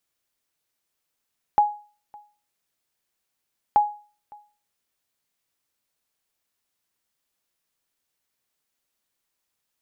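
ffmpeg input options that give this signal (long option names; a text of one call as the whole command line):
ffmpeg -f lavfi -i "aevalsrc='0.316*(sin(2*PI*833*mod(t,2.18))*exp(-6.91*mod(t,2.18)/0.38)+0.0447*sin(2*PI*833*max(mod(t,2.18)-0.56,0))*exp(-6.91*max(mod(t,2.18)-0.56,0)/0.38))':duration=4.36:sample_rate=44100" out.wav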